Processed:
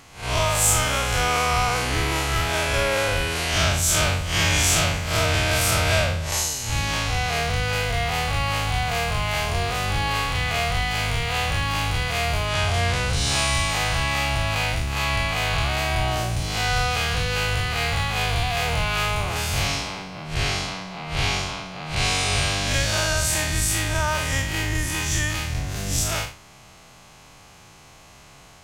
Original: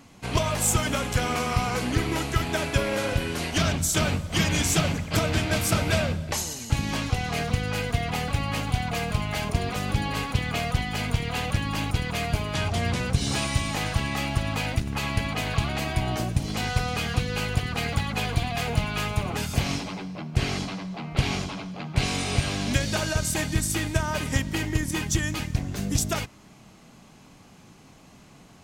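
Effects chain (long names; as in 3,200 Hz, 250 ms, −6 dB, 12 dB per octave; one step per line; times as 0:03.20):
spectrum smeared in time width 124 ms
parametric band 230 Hz −14.5 dB 1.5 octaves
level +9 dB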